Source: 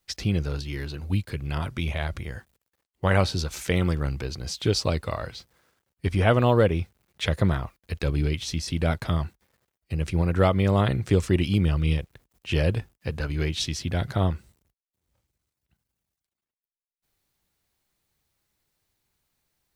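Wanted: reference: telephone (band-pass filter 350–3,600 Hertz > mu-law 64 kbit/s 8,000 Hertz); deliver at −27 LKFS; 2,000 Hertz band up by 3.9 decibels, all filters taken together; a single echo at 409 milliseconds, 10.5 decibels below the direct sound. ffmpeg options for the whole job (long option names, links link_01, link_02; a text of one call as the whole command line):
ffmpeg -i in.wav -af "highpass=350,lowpass=3600,equalizer=frequency=2000:width_type=o:gain=5.5,aecho=1:1:409:0.299,volume=2.5dB" -ar 8000 -c:a pcm_mulaw out.wav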